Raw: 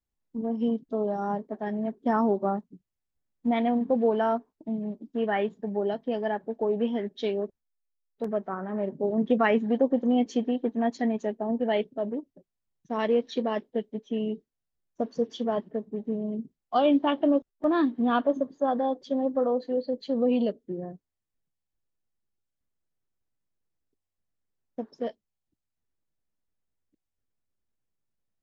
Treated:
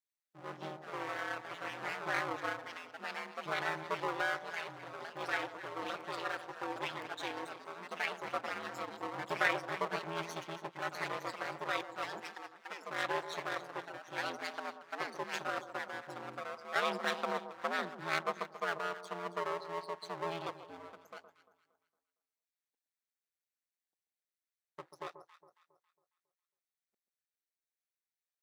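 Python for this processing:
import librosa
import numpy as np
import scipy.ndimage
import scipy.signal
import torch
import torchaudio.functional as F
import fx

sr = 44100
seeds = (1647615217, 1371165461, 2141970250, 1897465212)

y = fx.lower_of_two(x, sr, delay_ms=0.5)
y = scipy.signal.sosfilt(scipy.signal.butter(2, 850.0, 'highpass', fs=sr, output='sos'), y)
y = fx.echo_alternate(y, sr, ms=137, hz=1100.0, feedback_pct=59, wet_db=-10)
y = fx.echo_pitch(y, sr, ms=89, semitones=3, count=3, db_per_echo=-6.0)
y = y * np.sin(2.0 * np.pi * 84.0 * np.arange(len(y)) / sr)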